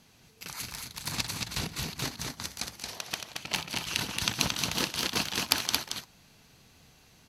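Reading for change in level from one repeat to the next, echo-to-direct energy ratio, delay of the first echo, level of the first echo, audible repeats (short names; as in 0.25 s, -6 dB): no steady repeat, -3.5 dB, 61 ms, -16.0 dB, 2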